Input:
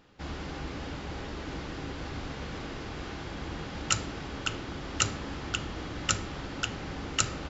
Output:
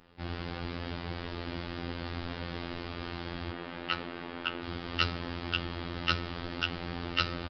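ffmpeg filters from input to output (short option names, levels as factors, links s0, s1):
-filter_complex "[0:a]asettb=1/sr,asplit=3[s0][s1][s2];[s0]atrim=end=3.514[s3];[s1]atrim=start=3.51:end=4.63,asetpts=PTS-STARTPTS,afade=t=in:d=0.004:c=qsin,afade=t=out:st=1.116:d=0.004:c=qsin,acrossover=split=190 3300:gain=0.224 1 0.2[s4][s5][s6];[s4][s5][s6]amix=inputs=3:normalize=0[s7];[s2]atrim=start=4.626[s8];[s3][s7]acrossfade=d=0.004:c1=hsin:c2=qsin[s9];[s9][s8]acrossfade=d=0.004:c1=qsin:c2=hsin,aresample=11025,aresample=44100,afftfilt=real='hypot(re,im)*cos(PI*b)':imag='0':win_size=2048:overlap=0.75,asplit=2[s10][s11];[s11]aecho=0:1:1083|2166|3249:0.126|0.039|0.0121[s12];[s10][s12]amix=inputs=2:normalize=0,adynamicequalizer=threshold=0.00355:dfrequency=2800:dqfactor=0.7:tfrequency=2800:tqfactor=0.7:attack=5:release=100:ratio=0.375:range=1.5:mode=boostabove:tftype=highshelf,volume=1.41"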